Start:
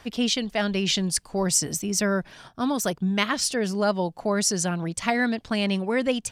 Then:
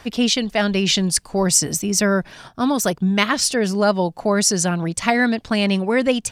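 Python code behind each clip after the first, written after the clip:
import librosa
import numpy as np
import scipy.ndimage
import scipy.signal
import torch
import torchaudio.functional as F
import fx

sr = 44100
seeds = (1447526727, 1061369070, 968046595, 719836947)

y = fx.notch(x, sr, hz=3200.0, q=29.0)
y = y * librosa.db_to_amplitude(6.0)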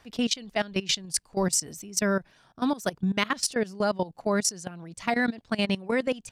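y = fx.level_steps(x, sr, step_db=18)
y = y * librosa.db_to_amplitude(-5.5)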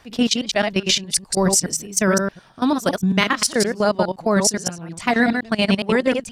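y = fx.reverse_delay(x, sr, ms=104, wet_db=-4.5)
y = fx.record_warp(y, sr, rpm=78.0, depth_cents=100.0)
y = y * librosa.db_to_amplitude(7.0)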